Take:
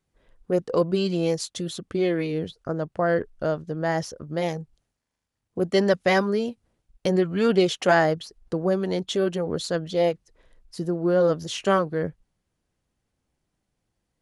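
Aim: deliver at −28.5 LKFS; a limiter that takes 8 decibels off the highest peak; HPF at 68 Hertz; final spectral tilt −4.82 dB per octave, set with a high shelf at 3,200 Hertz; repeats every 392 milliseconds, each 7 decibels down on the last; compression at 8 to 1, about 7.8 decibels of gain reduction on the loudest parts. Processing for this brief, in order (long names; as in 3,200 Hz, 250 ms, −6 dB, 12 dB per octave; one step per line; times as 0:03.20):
high-pass filter 68 Hz
high-shelf EQ 3,200 Hz +5.5 dB
downward compressor 8 to 1, threshold −22 dBFS
brickwall limiter −19.5 dBFS
repeating echo 392 ms, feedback 45%, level −7 dB
level +1 dB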